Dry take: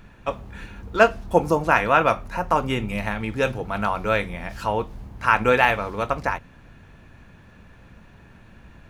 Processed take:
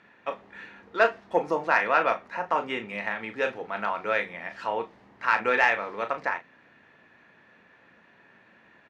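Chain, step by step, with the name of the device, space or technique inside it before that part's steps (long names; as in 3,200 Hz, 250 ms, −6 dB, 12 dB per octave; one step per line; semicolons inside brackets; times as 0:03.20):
intercom (band-pass filter 320–4,300 Hz; parametric band 1,900 Hz +8 dB 0.31 octaves; soft clipping −2.5 dBFS, distortion −22 dB; double-tracking delay 35 ms −9.5 dB)
level −5 dB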